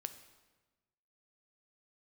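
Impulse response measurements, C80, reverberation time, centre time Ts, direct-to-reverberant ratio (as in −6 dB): 13.5 dB, 1.2 s, 10 ms, 9.0 dB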